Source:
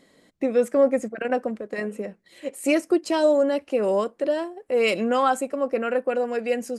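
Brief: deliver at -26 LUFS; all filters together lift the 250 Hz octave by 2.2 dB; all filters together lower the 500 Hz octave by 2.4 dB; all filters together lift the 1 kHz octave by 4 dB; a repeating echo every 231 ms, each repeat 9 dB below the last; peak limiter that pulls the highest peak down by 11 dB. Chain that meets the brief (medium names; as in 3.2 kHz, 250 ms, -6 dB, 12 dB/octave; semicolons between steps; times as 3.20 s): peaking EQ 250 Hz +4 dB; peaking EQ 500 Hz -5.5 dB; peaking EQ 1 kHz +7 dB; peak limiter -16.5 dBFS; feedback delay 231 ms, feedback 35%, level -9 dB; trim +0.5 dB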